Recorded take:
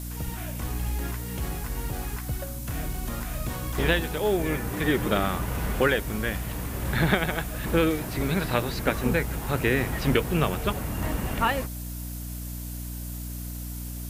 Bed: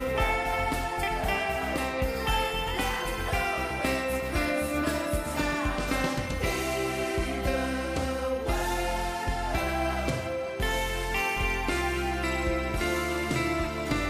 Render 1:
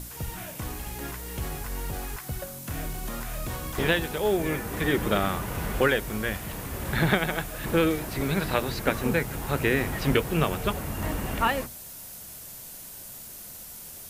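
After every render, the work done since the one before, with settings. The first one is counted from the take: hum notches 60/120/180/240/300 Hz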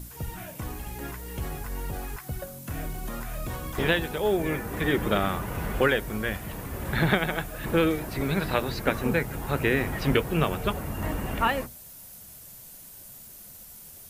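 noise reduction 6 dB, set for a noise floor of -43 dBFS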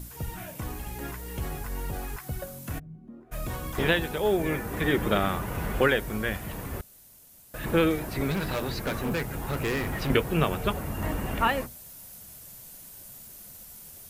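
2.78–3.31 s: band-pass filter 120 Hz -> 400 Hz, Q 4.8; 6.81–7.54 s: room tone; 8.31–10.10 s: overload inside the chain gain 25 dB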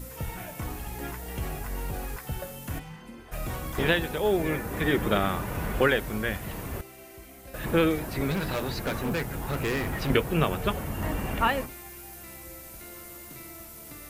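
add bed -19 dB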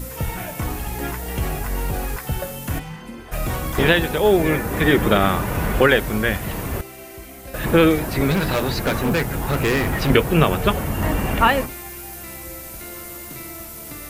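trim +9 dB; peak limiter -3 dBFS, peak gain reduction 3 dB

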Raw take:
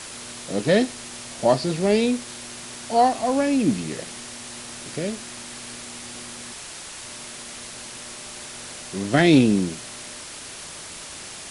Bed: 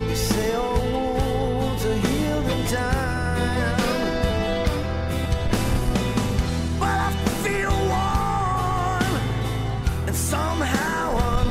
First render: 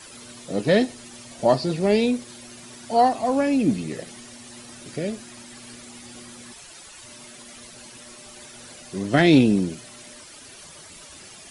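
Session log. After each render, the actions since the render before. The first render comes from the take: noise reduction 11 dB, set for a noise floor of -38 dBFS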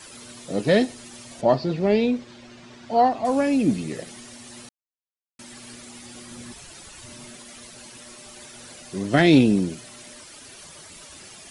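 1.41–3.25 s: distance through air 150 m; 4.69–5.39 s: mute; 6.31–7.37 s: bass shelf 280 Hz +9 dB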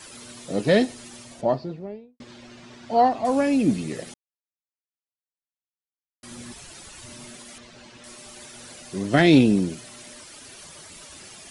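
1.05–2.20 s: studio fade out; 4.14–6.23 s: mute; 7.58–8.04 s: distance through air 120 m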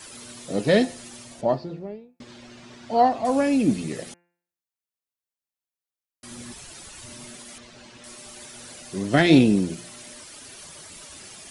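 treble shelf 9 kHz +3.5 dB; de-hum 173.8 Hz, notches 16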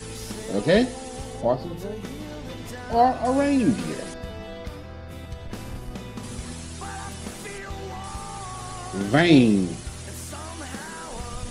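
add bed -13.5 dB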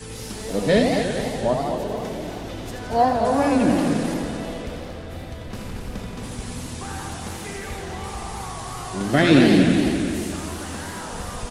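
on a send: feedback delay 231 ms, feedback 47%, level -7.5 dB; on the sum: modulated delay 86 ms, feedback 79%, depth 211 cents, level -6 dB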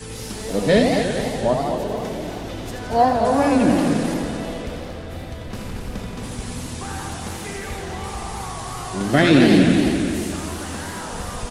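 trim +2 dB; peak limiter -3 dBFS, peak gain reduction 2.5 dB

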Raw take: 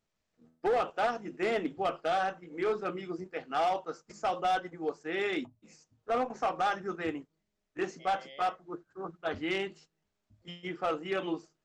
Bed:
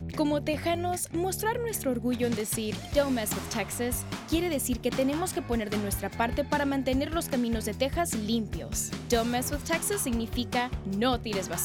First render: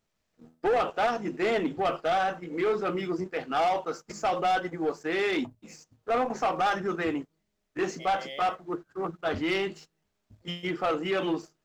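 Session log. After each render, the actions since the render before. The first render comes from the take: in parallel at 0 dB: peak limiter -32.5 dBFS, peak gain reduction 9.5 dB; on the sum: waveshaping leveller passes 1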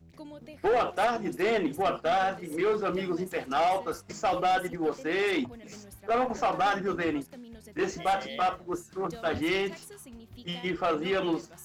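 add bed -18.5 dB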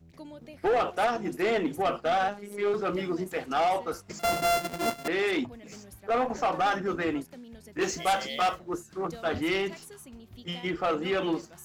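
2.28–2.74 s: robot voice 204 Hz; 4.19–5.08 s: sorted samples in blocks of 64 samples; 7.81–8.59 s: treble shelf 3.1 kHz +11 dB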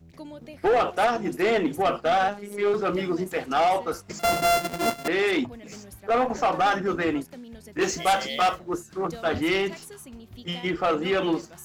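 trim +4 dB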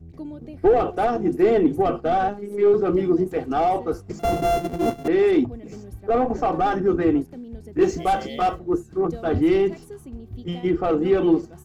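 tilt shelf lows +10 dB, about 690 Hz; comb 2.6 ms, depth 36%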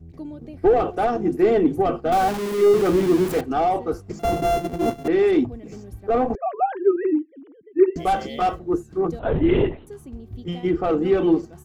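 2.12–3.41 s: jump at every zero crossing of -24 dBFS; 6.35–7.96 s: formants replaced by sine waves; 9.19–9.87 s: LPC vocoder at 8 kHz whisper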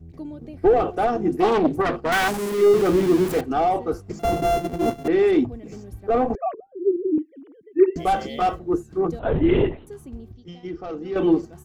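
1.40–2.50 s: self-modulated delay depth 0.57 ms; 6.54–7.18 s: inverse Chebyshev low-pass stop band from 800 Hz; 10.32–11.16 s: four-pole ladder low-pass 6.2 kHz, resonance 65%

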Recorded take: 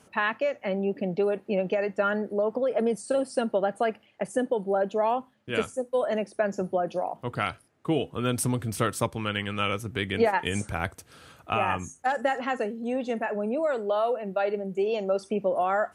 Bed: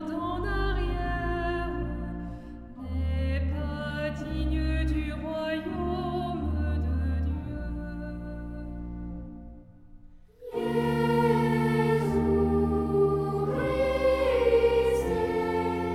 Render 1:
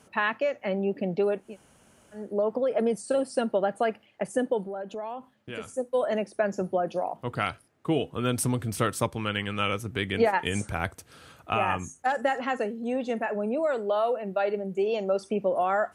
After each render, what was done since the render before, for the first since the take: 1.45–2.23 s: room tone, crossfade 0.24 s; 4.65–5.73 s: compression 3:1, threshold -35 dBFS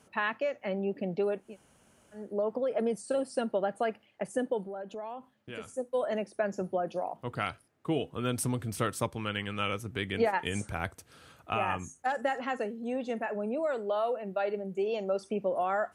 trim -4.5 dB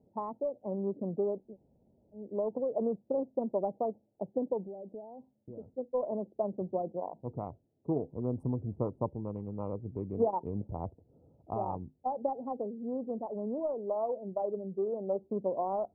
local Wiener filter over 41 samples; elliptic low-pass 1 kHz, stop band 40 dB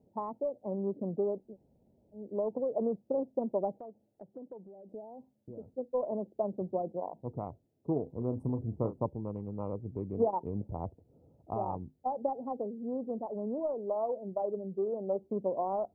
3.77–4.89 s: compression 2:1, threshold -54 dBFS; 8.03–9.06 s: doubling 35 ms -10 dB

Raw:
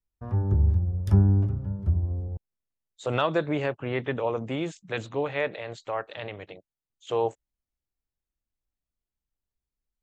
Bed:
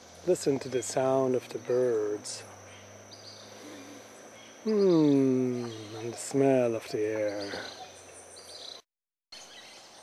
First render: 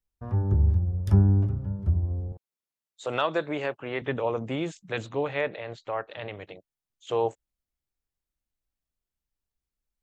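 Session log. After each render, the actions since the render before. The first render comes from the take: 2.32–4.02 s: high-pass 370 Hz 6 dB/octave; 5.41–6.29 s: distance through air 100 m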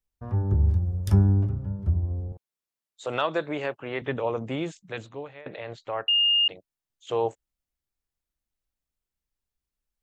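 0.62–1.33 s: treble shelf 2.9 kHz +10 dB; 4.62–5.46 s: fade out, to -23 dB; 6.08–6.48 s: bleep 2.83 kHz -18 dBFS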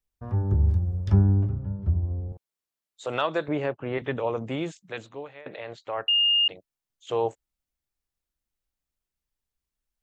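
1.04–2.29 s: distance through air 170 m; 3.48–3.98 s: tilt EQ -2.5 dB/octave; 4.78–5.98 s: bass shelf 110 Hz -11 dB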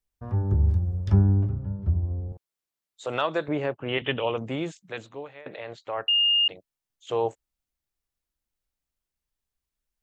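3.88–4.38 s: resonant low-pass 3 kHz, resonance Q 9.8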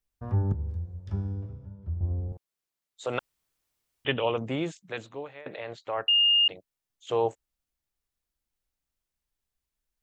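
0.52–2.01 s: feedback comb 82 Hz, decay 1.3 s, mix 80%; 3.19–4.05 s: room tone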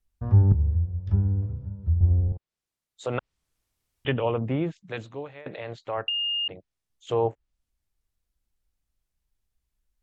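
bass shelf 180 Hz +11.5 dB; low-pass that closes with the level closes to 2.1 kHz, closed at -23 dBFS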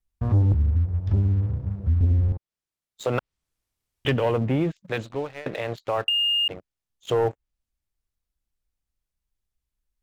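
waveshaping leveller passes 2; compression 1.5:1, threshold -25 dBFS, peak gain reduction 5 dB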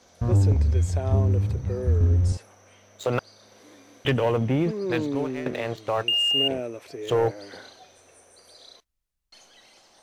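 add bed -5.5 dB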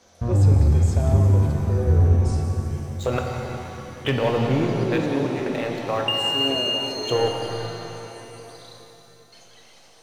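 two-band feedback delay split 470 Hz, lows 392 ms, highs 181 ms, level -12.5 dB; pitch-shifted reverb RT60 3 s, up +7 st, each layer -8 dB, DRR 2 dB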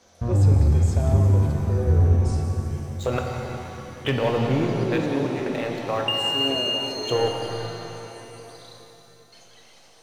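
trim -1 dB

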